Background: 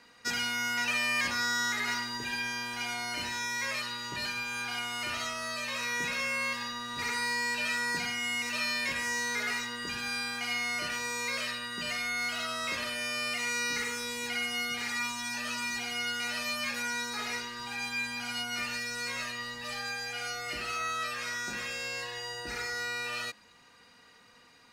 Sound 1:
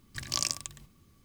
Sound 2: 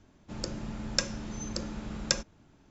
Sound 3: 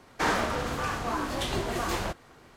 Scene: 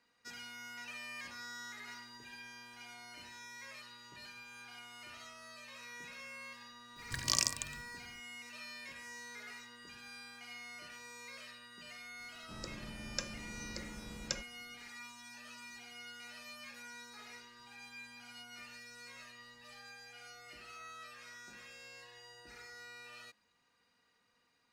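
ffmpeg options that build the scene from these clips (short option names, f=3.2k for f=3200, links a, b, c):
-filter_complex "[0:a]volume=-17dB[a];[1:a]atrim=end=1.24,asetpts=PTS-STARTPTS,volume=-1dB,afade=t=in:d=0.004:c=hsin,afade=t=out:st=1.236:d=0.004:c=hsin,adelay=6960[b];[2:a]atrim=end=2.7,asetpts=PTS-STARTPTS,volume=-10.5dB,afade=t=in:d=0.004:c=hsin,afade=t=out:st=2.696:d=0.004:c=hsin,adelay=538020S[c];[a][b][c]amix=inputs=3:normalize=0"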